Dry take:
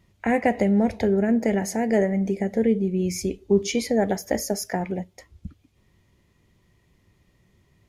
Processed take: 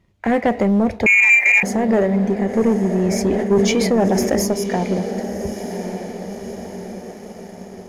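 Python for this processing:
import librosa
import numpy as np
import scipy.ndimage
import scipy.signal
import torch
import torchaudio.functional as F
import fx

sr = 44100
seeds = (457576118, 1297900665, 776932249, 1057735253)

y = 10.0 ** (-13.0 / 20.0) * np.tanh(x / 10.0 ** (-13.0 / 20.0))
y = fx.tilt_eq(y, sr, slope=-2.0)
y = fx.echo_diffused(y, sr, ms=1098, feedback_pct=55, wet_db=-8.5)
y = fx.freq_invert(y, sr, carrier_hz=2600, at=(1.06, 1.63))
y = fx.leveller(y, sr, passes=1)
y = fx.low_shelf(y, sr, hz=190.0, db=-10.0)
y = fx.sustainer(y, sr, db_per_s=30.0, at=(3.0, 4.47))
y = F.gain(torch.from_numpy(y), 2.5).numpy()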